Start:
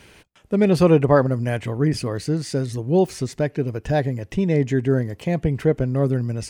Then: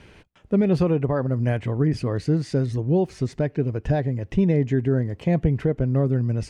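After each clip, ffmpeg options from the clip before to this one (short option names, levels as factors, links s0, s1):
-af "lowshelf=f=120:g=-10.5,alimiter=limit=0.188:level=0:latency=1:release=313,aemphasis=mode=reproduction:type=bsi,volume=0.891"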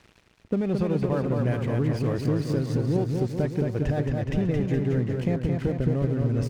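-af "acompressor=threshold=0.0631:ratio=6,aeval=exprs='sgn(val(0))*max(abs(val(0))-0.00447,0)':c=same,aecho=1:1:220|418|596.2|756.6|900.9:0.631|0.398|0.251|0.158|0.1,volume=1.26"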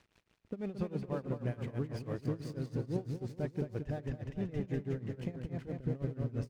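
-af "tremolo=f=6.1:d=0.88,volume=0.355"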